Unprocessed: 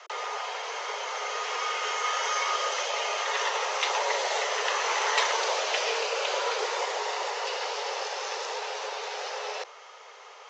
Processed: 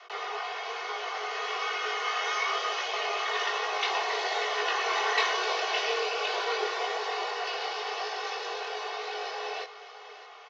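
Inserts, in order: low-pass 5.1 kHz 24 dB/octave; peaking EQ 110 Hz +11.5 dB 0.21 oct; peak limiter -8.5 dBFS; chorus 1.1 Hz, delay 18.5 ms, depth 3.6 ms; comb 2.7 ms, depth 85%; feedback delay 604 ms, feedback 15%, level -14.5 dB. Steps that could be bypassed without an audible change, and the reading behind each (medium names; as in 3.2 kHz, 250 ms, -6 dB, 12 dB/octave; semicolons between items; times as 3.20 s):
peaking EQ 110 Hz: input has nothing below 340 Hz; peak limiter -8.5 dBFS: peak at its input -11.0 dBFS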